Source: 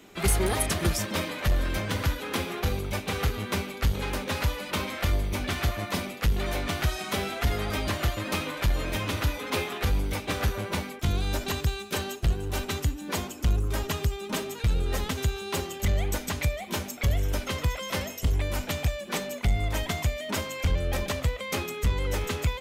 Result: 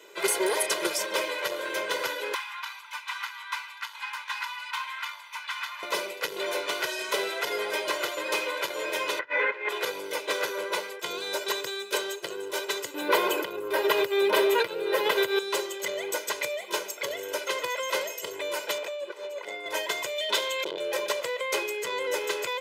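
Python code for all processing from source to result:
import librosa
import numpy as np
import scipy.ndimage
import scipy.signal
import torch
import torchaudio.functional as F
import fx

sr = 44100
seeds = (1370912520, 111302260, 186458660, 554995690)

y = fx.chain(x, sr, fx.ellip_highpass(hz=930.0, order=4, stop_db=50),
    fx.high_shelf(hz=4000.0, db=-10.5), at=(2.34, 5.83))
y = fx.chain(y, sr, fx.lowpass_res(hz=1900.0, q=3.4),
    fx.over_compress(threshold_db=-32.0, ratio=-0.5), at=(9.19, 9.69))
y = fx.chain(y, sr, fx.peak_eq(hz=310.0, db=-4.0, octaves=0.27),
    fx.quant_float(bits=8), at=(10.69, 11.5))
y = fx.chain(y, sr, fx.peak_eq(hz=6900.0, db=-14.5, octaves=1.1),
    fx.env_flatten(amount_pct=70), at=(12.94, 15.39))
y = fx.chain(y, sr, fx.highpass(hz=240.0, slope=24),
    fx.high_shelf(hz=3700.0, db=-11.0),
    fx.over_compress(threshold_db=-38.0, ratio=-0.5), at=(18.78, 19.66))
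y = fx.chain(y, sr, fx.peak_eq(hz=3600.0, db=12.5, octaves=0.53),
    fx.transformer_sat(knee_hz=500.0), at=(20.18, 20.8))
y = scipy.signal.sosfilt(scipy.signal.butter(4, 330.0, 'highpass', fs=sr, output='sos'), y)
y = fx.high_shelf(y, sr, hz=11000.0, db=-5.0)
y = y + 0.93 * np.pad(y, (int(2.0 * sr / 1000.0), 0))[:len(y)]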